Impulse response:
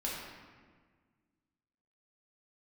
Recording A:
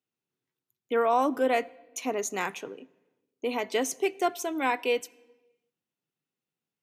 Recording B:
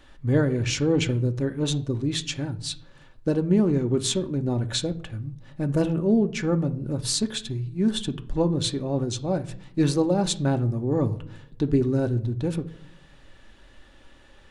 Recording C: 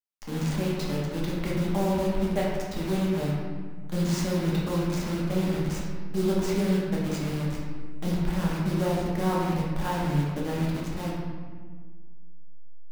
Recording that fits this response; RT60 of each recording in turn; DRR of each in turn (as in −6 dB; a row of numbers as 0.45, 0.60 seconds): C; 1.2, 0.60, 1.6 seconds; 18.0, 6.0, −5.5 decibels